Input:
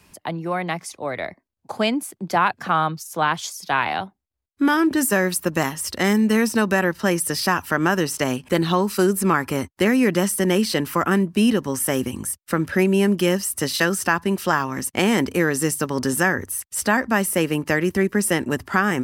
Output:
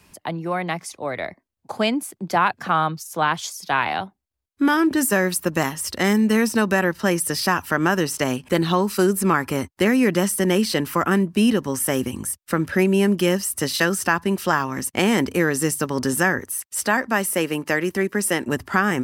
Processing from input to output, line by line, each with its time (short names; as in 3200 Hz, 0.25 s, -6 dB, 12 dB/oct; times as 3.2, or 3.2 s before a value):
16.39–18.48 HPF 260 Hz 6 dB/oct